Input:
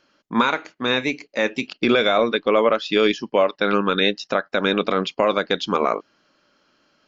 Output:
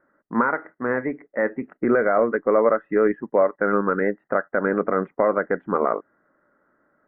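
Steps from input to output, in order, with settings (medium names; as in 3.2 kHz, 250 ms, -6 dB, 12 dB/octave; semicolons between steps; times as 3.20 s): rippled Chebyshev low-pass 2 kHz, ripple 3 dB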